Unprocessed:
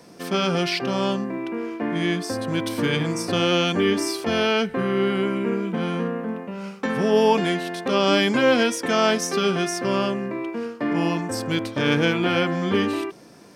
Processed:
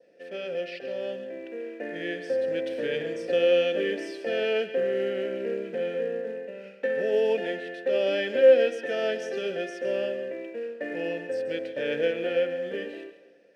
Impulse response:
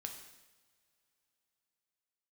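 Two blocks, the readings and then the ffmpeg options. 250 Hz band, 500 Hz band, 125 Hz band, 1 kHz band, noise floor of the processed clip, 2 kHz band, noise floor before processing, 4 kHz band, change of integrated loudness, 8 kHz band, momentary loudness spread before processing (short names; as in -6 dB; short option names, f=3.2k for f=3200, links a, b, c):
-14.5 dB, -1.0 dB, -20.5 dB, -17.0 dB, -51 dBFS, -7.5 dB, -43 dBFS, -12.0 dB, -5.0 dB, under -20 dB, 9 LU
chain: -filter_complex "[0:a]adynamicequalizer=threshold=0.00794:dfrequency=2200:dqfactor=2.2:tfrequency=2200:tqfactor=2.2:attack=5:release=100:ratio=0.375:range=2:mode=cutabove:tftype=bell,dynaudnorm=f=430:g=7:m=9dB,acrusher=bits=5:mode=log:mix=0:aa=0.000001,asplit=3[a][b][c];[a]bandpass=f=530:t=q:w=8,volume=0dB[d];[b]bandpass=f=1.84k:t=q:w=8,volume=-6dB[e];[c]bandpass=f=2.48k:t=q:w=8,volume=-9dB[f];[d][e][f]amix=inputs=3:normalize=0,asplit=2[g][h];[1:a]atrim=start_sample=2205,adelay=137[i];[h][i]afir=irnorm=-1:irlink=0,volume=-8.5dB[j];[g][j]amix=inputs=2:normalize=0,volume=-1dB"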